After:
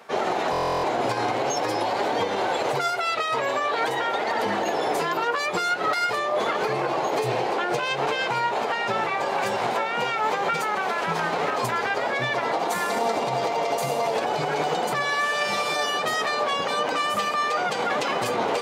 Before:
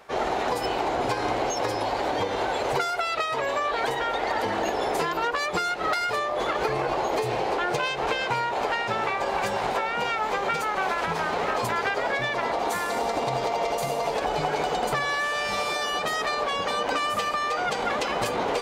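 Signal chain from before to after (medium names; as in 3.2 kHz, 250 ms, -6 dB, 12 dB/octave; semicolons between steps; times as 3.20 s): high-pass 110 Hz 24 dB/octave; peak limiter -18 dBFS, peak gain reduction 6 dB; flange 0.46 Hz, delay 4.2 ms, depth 4.8 ms, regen +70%; buffer glitch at 0.51 s, samples 1024, times 13; trim +7 dB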